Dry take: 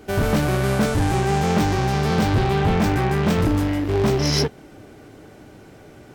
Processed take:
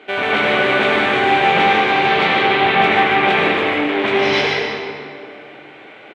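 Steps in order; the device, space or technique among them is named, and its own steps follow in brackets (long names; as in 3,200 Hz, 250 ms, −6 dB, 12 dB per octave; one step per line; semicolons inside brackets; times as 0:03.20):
station announcement (band-pass filter 440–5,000 Hz; parametric band 2,200 Hz +8 dB 0.58 octaves; loudspeakers that aren't time-aligned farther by 52 metres −10 dB, 63 metres −12 dB; convolution reverb RT60 2.2 s, pre-delay 65 ms, DRR −2 dB)
high shelf with overshoot 4,300 Hz −7 dB, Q 3
level +3.5 dB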